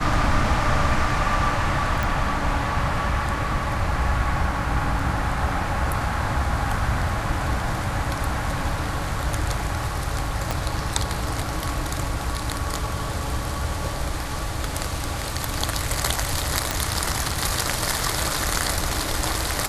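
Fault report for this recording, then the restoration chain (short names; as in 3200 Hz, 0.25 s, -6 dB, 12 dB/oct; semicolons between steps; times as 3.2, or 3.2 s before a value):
2.03 pop
10.51 pop
16.71 pop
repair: de-click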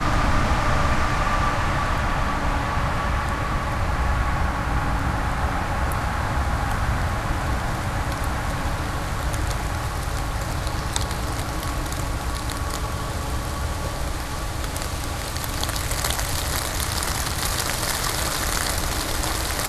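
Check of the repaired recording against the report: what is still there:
10.51 pop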